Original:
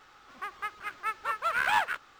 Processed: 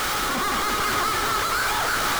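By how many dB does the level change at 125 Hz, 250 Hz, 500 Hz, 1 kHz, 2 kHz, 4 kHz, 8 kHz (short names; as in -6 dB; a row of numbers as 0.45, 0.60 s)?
n/a, +24.0 dB, +14.0 dB, +8.0 dB, +6.5 dB, +16.0 dB, +23.0 dB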